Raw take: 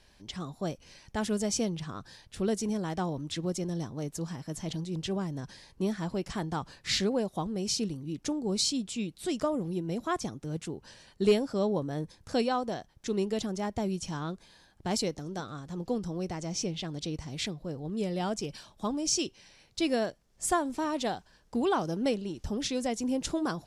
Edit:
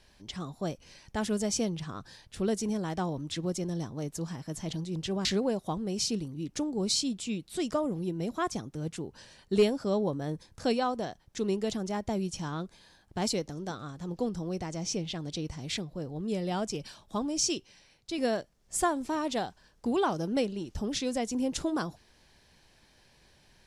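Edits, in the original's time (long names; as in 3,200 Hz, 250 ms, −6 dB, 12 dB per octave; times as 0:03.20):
0:05.25–0:06.94: remove
0:19.15–0:19.87: fade out, to −6.5 dB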